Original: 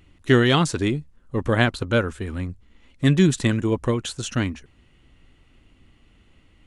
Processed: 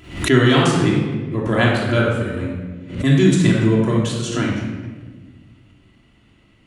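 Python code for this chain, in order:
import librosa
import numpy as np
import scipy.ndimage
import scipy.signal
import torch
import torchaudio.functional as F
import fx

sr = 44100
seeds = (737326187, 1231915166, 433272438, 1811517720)

y = fx.highpass(x, sr, hz=120.0, slope=6)
y = fx.room_shoebox(y, sr, seeds[0], volume_m3=1200.0, walls='mixed', distance_m=3.0)
y = fx.pre_swell(y, sr, db_per_s=110.0)
y = y * librosa.db_to_amplitude(-2.0)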